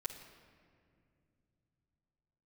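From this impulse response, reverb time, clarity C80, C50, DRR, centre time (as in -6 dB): no single decay rate, 9.0 dB, 7.5 dB, -5.0 dB, 32 ms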